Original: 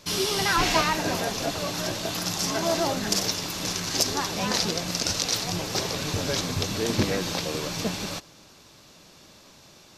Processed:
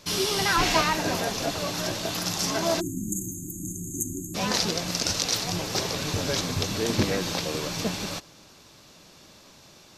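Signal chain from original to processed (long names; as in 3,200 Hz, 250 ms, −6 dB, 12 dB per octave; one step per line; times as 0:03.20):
time-frequency box erased 0:02.80–0:04.35, 380–6,300 Hz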